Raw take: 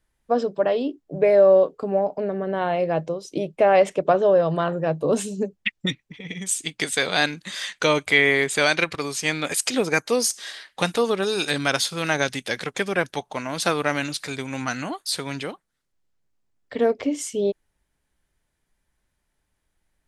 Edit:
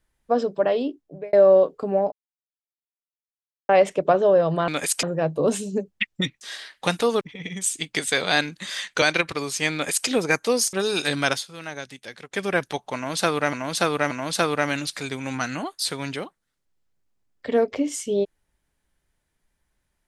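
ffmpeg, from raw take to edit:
-filter_complex "[0:a]asplit=14[a][b][c][d][e][f][g][h][i][j][k][l][m][n];[a]atrim=end=1.33,asetpts=PTS-STARTPTS,afade=t=out:st=0.82:d=0.51[o];[b]atrim=start=1.33:end=2.12,asetpts=PTS-STARTPTS,afade=t=in:d=0.004:c=hsin,afade=t=out:st=0.786:d=0.004:c=hsin[p];[c]atrim=start=2.12:end=3.69,asetpts=PTS-STARTPTS,volume=0[q];[d]atrim=start=3.69:end=4.682,asetpts=PTS-STARTPTS,afade=t=in:d=0.004:c=hsin[r];[e]atrim=start=9.358:end=9.712[s];[f]atrim=start=4.678:end=6.062[t];[g]atrim=start=10.358:end=11.162[u];[h]atrim=start=6.058:end=7.872[v];[i]atrim=start=8.648:end=10.362[w];[j]atrim=start=11.158:end=11.86,asetpts=PTS-STARTPTS,afade=t=out:st=0.582:d=0.12:silence=0.251189[x];[k]atrim=start=11.86:end=12.73,asetpts=PTS-STARTPTS,volume=-12dB[y];[l]atrim=start=12.73:end=13.962,asetpts=PTS-STARTPTS,afade=t=in:d=0.12:silence=0.251189[z];[m]atrim=start=13.378:end=13.962[aa];[n]atrim=start=13.378[ab];[o][p][q][r]concat=n=4:v=0:a=1[ac];[ac][s]acrossfade=d=0.004:c1=hsin:c2=hsin[ad];[ad][t]acrossfade=d=0.004:c1=hsin:c2=hsin[ae];[ae][u]acrossfade=d=0.004:c1=hsin:c2=hsin[af];[af][v]acrossfade=d=0.004:c1=hsin:c2=hsin[ag];[ag][w]acrossfade=d=0.004:c1=hsin:c2=hsin[ah];[x][y][z]concat=n=3:v=0:a=1[ai];[ah][ai]acrossfade=d=0.004:c1=hsin:c2=hsin[aj];[aj][aa]acrossfade=d=0.004:c1=hsin:c2=hsin[ak];[ak][ab]acrossfade=d=0.004:c1=hsin:c2=hsin"

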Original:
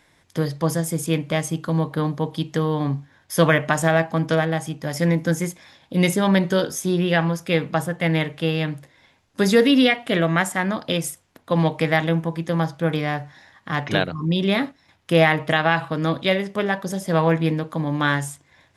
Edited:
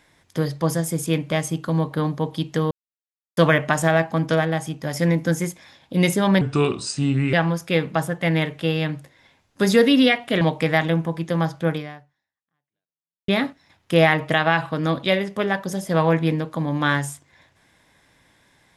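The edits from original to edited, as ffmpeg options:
-filter_complex "[0:a]asplit=7[a][b][c][d][e][f][g];[a]atrim=end=2.71,asetpts=PTS-STARTPTS,afade=t=out:st=2.706:d=0.004:c=hsin[h];[b]atrim=start=2.71:end=3.37,asetpts=PTS-STARTPTS,volume=0[i];[c]atrim=start=3.37:end=6.414,asetpts=PTS-STARTPTS,afade=t=in:d=0.004:c=hsin[j];[d]atrim=start=6.41:end=7.12,asetpts=PTS-STARTPTS,asetrate=33957,aresample=44100[k];[e]atrim=start=7.116:end=10.202[l];[f]atrim=start=11.598:end=14.47,asetpts=PTS-STARTPTS,afade=t=out:st=1.292:d=1.58:c=exp[m];[g]atrim=start=14.47,asetpts=PTS-STARTPTS,afade=t=in:d=0.004:c=hsin[n];[h][i][j]concat=n=3:v=0:a=1[o];[o][k]acrossfade=d=0.004:c1=hsin:c2=hsin[p];[p][l]acrossfade=d=0.004:c1=hsin:c2=hsin[q];[m][n]concat=n=2:v=0:a=1[r];[q][r]acrossfade=d=0.004:c1=hsin:c2=hsin"

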